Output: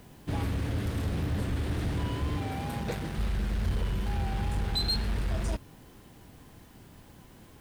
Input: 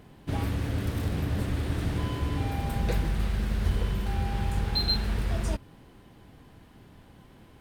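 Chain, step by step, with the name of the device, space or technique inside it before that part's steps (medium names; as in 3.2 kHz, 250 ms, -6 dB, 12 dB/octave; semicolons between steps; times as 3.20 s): compact cassette (saturation -22 dBFS, distortion -17 dB; low-pass 13 kHz; wow and flutter; white noise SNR 33 dB); 2.38–3.18 s: high-pass 100 Hz 12 dB/octave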